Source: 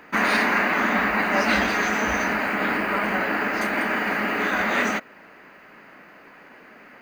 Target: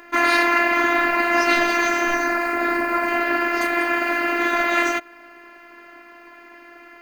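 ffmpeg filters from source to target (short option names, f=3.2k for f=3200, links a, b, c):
-filter_complex "[0:a]asettb=1/sr,asplit=3[a][b][c];[a]atrim=end=2.144[d];[b]atrim=start=2.14:end=3.08,asetpts=PTS-STARTPTS,afade=t=in:d=0.004:c=qsin,afade=t=out:st=0.936:d=0.004:c=qsin,equalizer=f=3.1k:t=o:w=0.6:g=-9.5[e];[c]atrim=start=3.076[f];[d][e]acrossfade=d=0.004:c1=hsin:c2=qsin[g];[g][f]acrossfade=d=0.004:c1=qsin:c2=hsin,afftfilt=real='hypot(re,im)*cos(PI*b)':imag='0':win_size=512:overlap=0.75,volume=6.5dB"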